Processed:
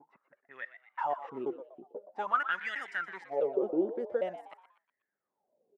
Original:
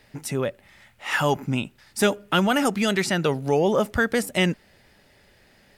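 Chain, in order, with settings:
slices reordered back to front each 162 ms, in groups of 2
Bessel high-pass filter 170 Hz
low-pass that shuts in the quiet parts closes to 360 Hz, open at −21.5 dBFS
transient designer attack −1 dB, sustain −5 dB
LFO wah 0.46 Hz 330–1,900 Hz, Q 14
on a send: echo with shifted repeats 121 ms, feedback 40%, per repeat +120 Hz, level −13 dB
on the sum: level +5.5 dB

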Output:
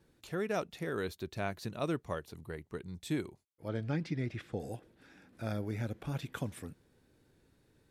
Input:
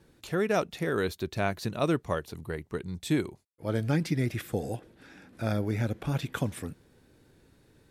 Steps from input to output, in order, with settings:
0:03.68–0:04.60: low-pass filter 4,600 Hz 12 dB per octave
level −7.5 dB

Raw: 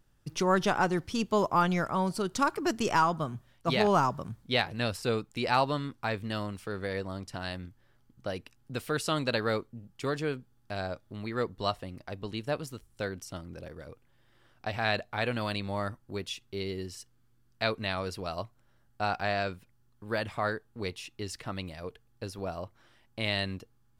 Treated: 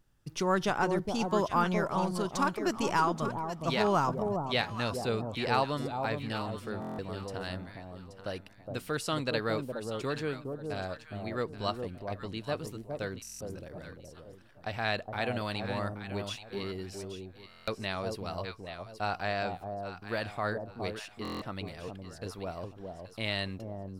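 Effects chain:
delay that swaps between a low-pass and a high-pass 414 ms, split 880 Hz, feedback 50%, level −4 dB
buffer that repeats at 0:06.80/0:13.22/0:17.49/0:21.23, samples 1,024, times 7
level −2.5 dB

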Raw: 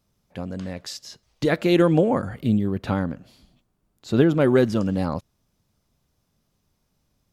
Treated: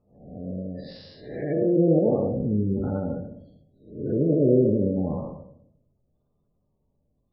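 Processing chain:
spectrum smeared in time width 318 ms
Butterworth low-pass 4,700 Hz 48 dB per octave
gate on every frequency bin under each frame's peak −20 dB strong
on a send: parametric band 520 Hz +14.5 dB 0.92 octaves + convolution reverb RT60 0.65 s, pre-delay 3 ms, DRR 5.5 dB

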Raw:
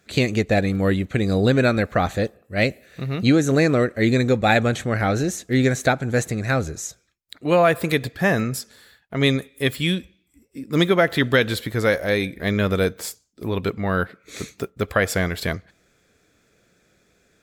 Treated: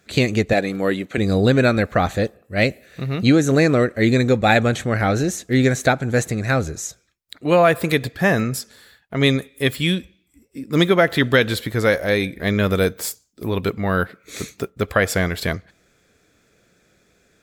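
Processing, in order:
0:00.53–0:01.18: high-pass filter 250 Hz 12 dB per octave
0:12.63–0:14.57: high-shelf EQ 11,000 Hz +8 dB
level +2 dB

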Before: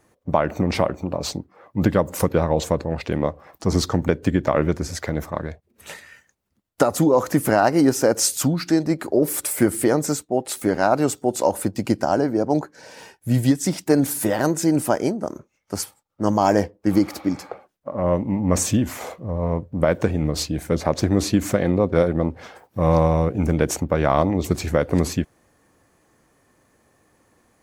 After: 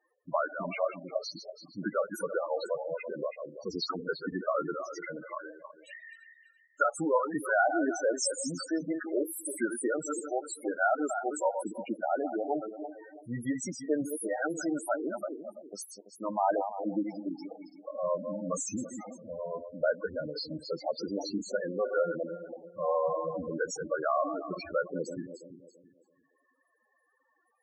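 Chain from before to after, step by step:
feedback delay that plays each chunk backwards 167 ms, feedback 55%, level −7 dB
dynamic equaliser 1,400 Hz, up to +6 dB, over −42 dBFS, Q 3.6
high-pass filter 1,100 Hz 6 dB per octave
spectral peaks only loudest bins 8
level −2 dB

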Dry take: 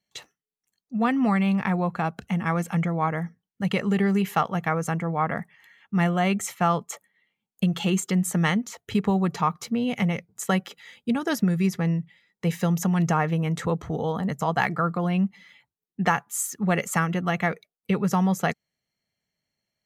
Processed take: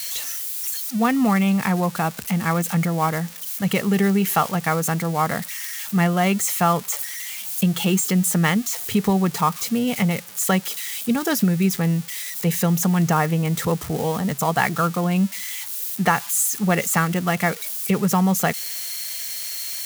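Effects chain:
spike at every zero crossing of −24 dBFS
level +3.5 dB

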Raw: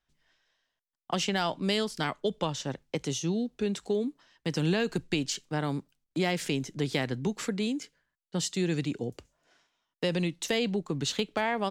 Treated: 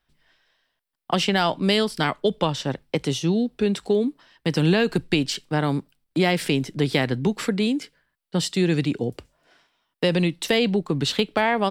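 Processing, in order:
parametric band 6,600 Hz −11 dB 0.34 octaves
level +8 dB

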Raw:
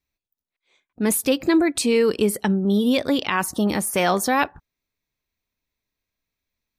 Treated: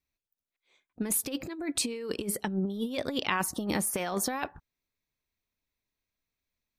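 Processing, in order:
compressor whose output falls as the input rises −22 dBFS, ratio −0.5
level −8 dB

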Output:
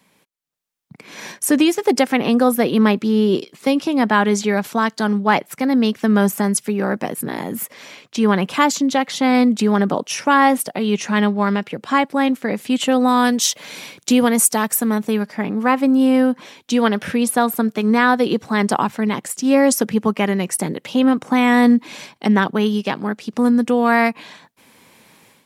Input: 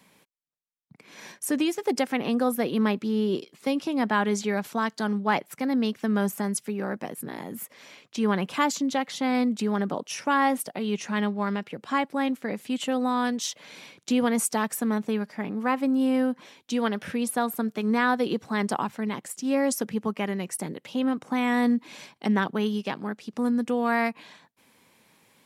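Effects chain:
0:13.08–0:15.23: high-shelf EQ 8,800 Hz +11 dB
automatic gain control gain up to 11 dB

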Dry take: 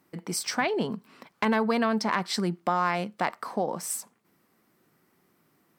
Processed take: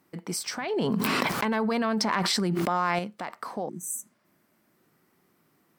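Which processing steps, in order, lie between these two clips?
0:03.71–0:04.69: healed spectral selection 400–5,900 Hz after
brickwall limiter −21.5 dBFS, peak gain reduction 9.5 dB
0:00.76–0:02.99: envelope flattener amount 100%

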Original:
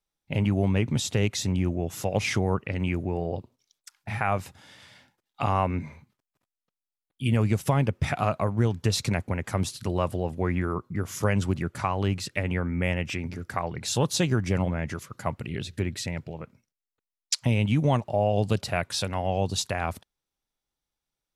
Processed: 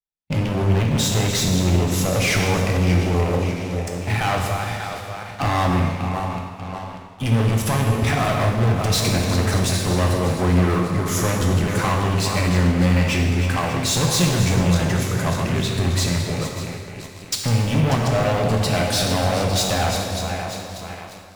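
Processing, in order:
feedback delay that plays each chunk backwards 295 ms, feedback 67%, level −12 dB
leveller curve on the samples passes 5
reverb whose tail is shaped and stops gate 480 ms falling, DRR 0.5 dB
level −7.5 dB

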